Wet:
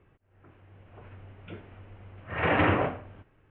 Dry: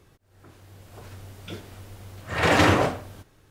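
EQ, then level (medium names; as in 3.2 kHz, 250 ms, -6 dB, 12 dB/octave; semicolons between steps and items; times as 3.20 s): steep low-pass 2.9 kHz 48 dB/octave; -5.0 dB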